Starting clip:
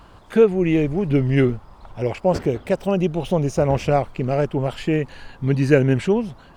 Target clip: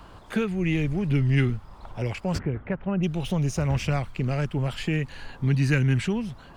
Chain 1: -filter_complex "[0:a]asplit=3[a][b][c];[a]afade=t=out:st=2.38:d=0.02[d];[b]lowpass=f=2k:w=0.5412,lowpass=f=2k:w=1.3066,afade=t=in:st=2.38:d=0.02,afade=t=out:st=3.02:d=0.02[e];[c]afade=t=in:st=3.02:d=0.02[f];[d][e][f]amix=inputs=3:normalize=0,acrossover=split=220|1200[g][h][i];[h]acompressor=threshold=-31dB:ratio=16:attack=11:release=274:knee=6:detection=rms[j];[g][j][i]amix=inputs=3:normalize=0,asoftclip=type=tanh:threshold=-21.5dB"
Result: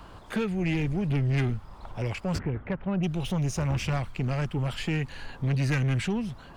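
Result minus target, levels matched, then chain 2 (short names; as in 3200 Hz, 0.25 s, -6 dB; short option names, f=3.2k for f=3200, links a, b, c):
soft clip: distortion +16 dB
-filter_complex "[0:a]asplit=3[a][b][c];[a]afade=t=out:st=2.38:d=0.02[d];[b]lowpass=f=2k:w=0.5412,lowpass=f=2k:w=1.3066,afade=t=in:st=2.38:d=0.02,afade=t=out:st=3.02:d=0.02[e];[c]afade=t=in:st=3.02:d=0.02[f];[d][e][f]amix=inputs=3:normalize=0,acrossover=split=220|1200[g][h][i];[h]acompressor=threshold=-31dB:ratio=16:attack=11:release=274:knee=6:detection=rms[j];[g][j][i]amix=inputs=3:normalize=0,asoftclip=type=tanh:threshold=-10dB"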